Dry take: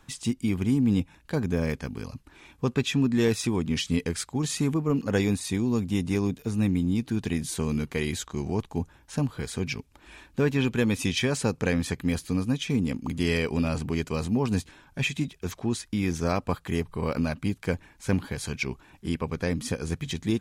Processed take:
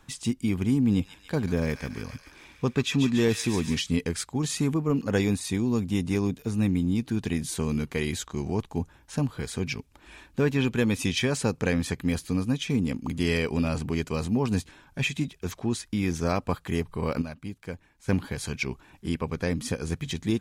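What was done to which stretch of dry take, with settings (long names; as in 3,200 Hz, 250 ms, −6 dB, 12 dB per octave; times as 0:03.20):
0:00.88–0:03.80: delay with a high-pass on its return 142 ms, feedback 65%, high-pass 1,600 Hz, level −6 dB
0:17.22–0:18.08: clip gain −9 dB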